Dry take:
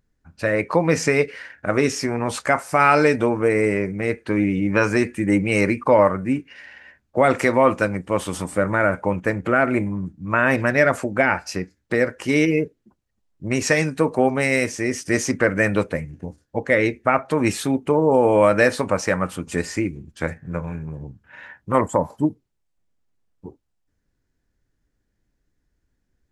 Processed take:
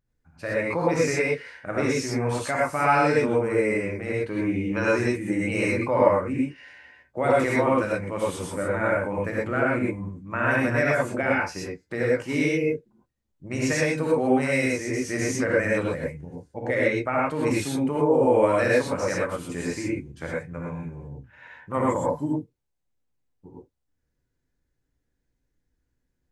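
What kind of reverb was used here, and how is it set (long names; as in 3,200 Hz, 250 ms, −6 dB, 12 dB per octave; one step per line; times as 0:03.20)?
reverb whose tail is shaped and stops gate 140 ms rising, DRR −5 dB
level −10.5 dB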